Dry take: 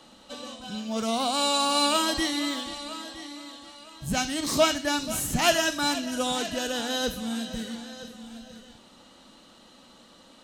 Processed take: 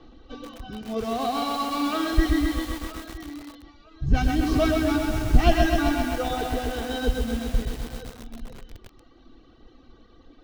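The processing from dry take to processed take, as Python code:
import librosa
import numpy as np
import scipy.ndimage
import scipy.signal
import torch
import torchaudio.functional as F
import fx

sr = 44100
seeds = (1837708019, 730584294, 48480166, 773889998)

y = fx.tilt_eq(x, sr, slope=-4.0)
y = fx.dereverb_blind(y, sr, rt60_s=1.6)
y = scipy.signal.sosfilt(scipy.signal.butter(8, 6100.0, 'lowpass', fs=sr, output='sos'), y)
y = fx.peak_eq(y, sr, hz=840.0, db=-6.5, octaves=0.32)
y = y + 0.76 * np.pad(y, (int(2.6 * sr / 1000.0), 0))[:len(y)]
y = fx.echo_feedback(y, sr, ms=114, feedback_pct=38, wet_db=-8.5)
y = fx.echo_crushed(y, sr, ms=130, feedback_pct=80, bits=6, wet_db=-4.5)
y = F.gain(torch.from_numpy(y), -2.0).numpy()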